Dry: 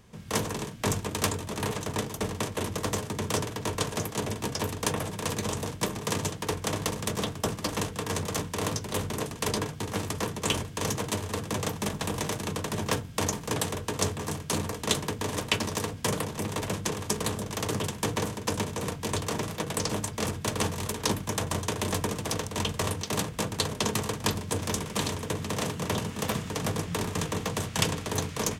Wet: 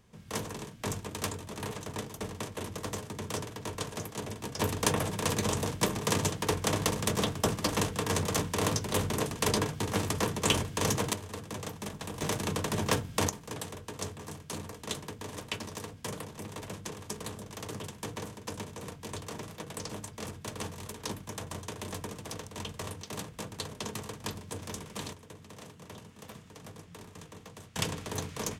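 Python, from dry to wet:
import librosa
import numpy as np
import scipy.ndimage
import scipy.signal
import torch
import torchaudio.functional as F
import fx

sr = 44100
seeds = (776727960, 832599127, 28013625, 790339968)

y = fx.gain(x, sr, db=fx.steps((0.0, -7.0), (4.59, 1.0), (11.13, -8.5), (12.22, 0.0), (13.29, -10.0), (25.13, -18.0), (27.76, -6.0)))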